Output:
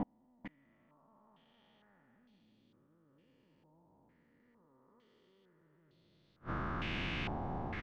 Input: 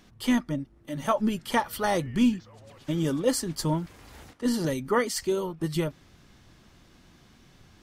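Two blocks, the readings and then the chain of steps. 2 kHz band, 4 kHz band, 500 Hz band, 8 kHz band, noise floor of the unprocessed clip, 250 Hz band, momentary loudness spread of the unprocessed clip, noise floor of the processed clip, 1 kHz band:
-10.5 dB, -13.5 dB, -22.5 dB, under -35 dB, -57 dBFS, -20.0 dB, 9 LU, -72 dBFS, -15.0 dB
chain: time blur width 0.622 s; reverse; compressor 10:1, threshold -48 dBFS, peak gain reduction 18.5 dB; reverse; flipped gate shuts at -44 dBFS, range -38 dB; echo 0.446 s -10 dB; stepped low-pass 2.2 Hz 820–4100 Hz; gain +17.5 dB

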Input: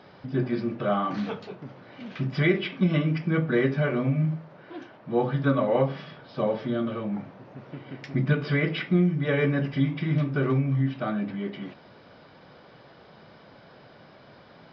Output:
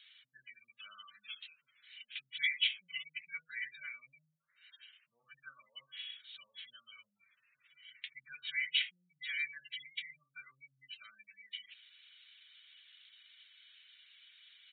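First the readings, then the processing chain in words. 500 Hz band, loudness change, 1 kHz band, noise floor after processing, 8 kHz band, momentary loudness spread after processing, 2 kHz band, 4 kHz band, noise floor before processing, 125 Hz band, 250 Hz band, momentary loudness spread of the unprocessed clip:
under -40 dB, -13.0 dB, -30.5 dB, -84 dBFS, n/a, 25 LU, -6.5 dB, +2.5 dB, -52 dBFS, under -40 dB, under -40 dB, 18 LU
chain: spectral gate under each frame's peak -25 dB strong; inverse Chebyshev high-pass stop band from 860 Hz, stop band 60 dB; downsampling 8000 Hz; gain +8 dB

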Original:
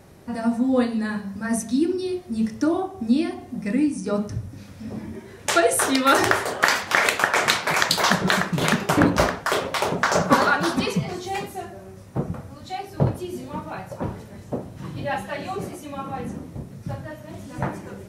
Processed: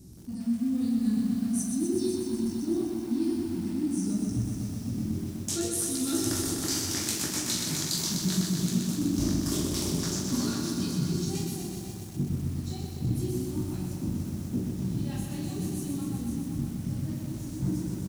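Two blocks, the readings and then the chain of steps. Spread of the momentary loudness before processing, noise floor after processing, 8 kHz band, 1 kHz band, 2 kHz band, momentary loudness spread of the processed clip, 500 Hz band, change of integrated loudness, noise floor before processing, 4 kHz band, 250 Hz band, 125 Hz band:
16 LU, -38 dBFS, -1.0 dB, -22.5 dB, -22.5 dB, 6 LU, -12.0 dB, -7.0 dB, -43 dBFS, -7.0 dB, -3.0 dB, -1.0 dB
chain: EQ curve 320 Hz 0 dB, 500 Hz -23 dB, 1900 Hz -25 dB, 5700 Hz 0 dB; reverse; compressor 10:1, threshold -29 dBFS, peak gain reduction 15.5 dB; reverse; chorus 0.68 Hz, delay 16 ms, depth 7.2 ms; on a send: tapped delay 43/534 ms -6.5/-12 dB; on the sum: lo-fi delay 0.125 s, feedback 80%, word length 9-bit, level -4.5 dB; gain +4.5 dB

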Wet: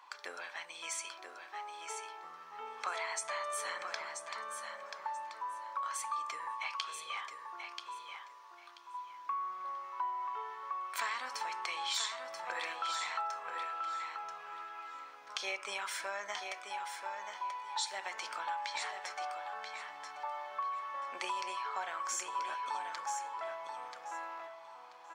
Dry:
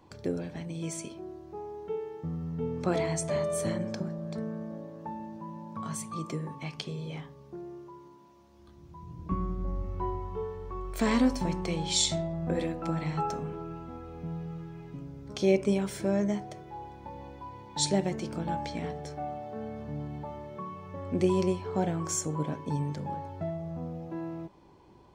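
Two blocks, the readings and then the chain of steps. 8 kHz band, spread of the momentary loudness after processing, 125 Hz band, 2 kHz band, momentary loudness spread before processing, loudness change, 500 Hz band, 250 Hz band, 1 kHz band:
-5.5 dB, 9 LU, under -40 dB, +4.0 dB, 16 LU, -7.0 dB, -15.5 dB, under -30 dB, +1.5 dB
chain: Chebyshev high-pass 1100 Hz, order 3; high shelf 4000 Hz -11.5 dB; compressor 5:1, threshold -46 dBFS, peak gain reduction 14.5 dB; on a send: feedback echo 0.984 s, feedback 21%, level -6.5 dB; on the sum: gain +11 dB

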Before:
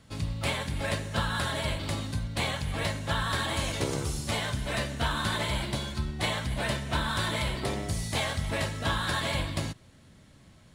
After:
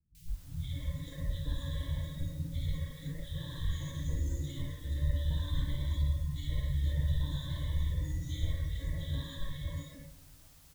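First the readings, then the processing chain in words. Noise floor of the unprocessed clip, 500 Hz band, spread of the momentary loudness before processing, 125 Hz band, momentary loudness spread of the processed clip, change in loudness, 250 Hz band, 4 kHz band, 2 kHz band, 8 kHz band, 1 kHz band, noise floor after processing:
-56 dBFS, -17.0 dB, 4 LU, -1.5 dB, 9 LU, -6.0 dB, -8.5 dB, -14.5 dB, -20.0 dB, -15.5 dB, -23.5 dB, -56 dBFS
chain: octaver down 1 oct, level -2 dB; passive tone stack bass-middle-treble 10-0-1; on a send: flutter echo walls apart 9.5 m, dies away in 0.6 s; on the sum: shoebox room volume 180 m³, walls hard, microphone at 0.52 m; gate -36 dBFS, range -8 dB; in parallel at -0.5 dB: limiter -33 dBFS, peak gain reduction 11 dB; on the sum: ripple EQ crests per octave 1.1, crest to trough 16 dB; added noise white -47 dBFS; spectral noise reduction 11 dB; three bands offset in time lows, highs, mids 0.15/0.28 s, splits 200/2200 Hz; gain -2.5 dB

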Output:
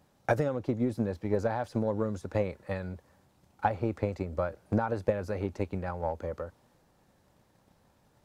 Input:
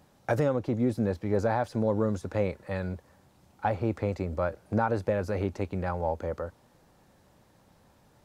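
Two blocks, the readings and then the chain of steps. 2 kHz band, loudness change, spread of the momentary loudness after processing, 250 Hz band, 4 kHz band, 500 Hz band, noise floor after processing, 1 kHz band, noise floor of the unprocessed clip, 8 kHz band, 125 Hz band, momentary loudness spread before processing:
-2.0 dB, -2.5 dB, 8 LU, -2.5 dB, -3.0 dB, -2.5 dB, -67 dBFS, -2.0 dB, -62 dBFS, n/a, -3.0 dB, 7 LU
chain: transient shaper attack +8 dB, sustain +2 dB; gain -5.5 dB

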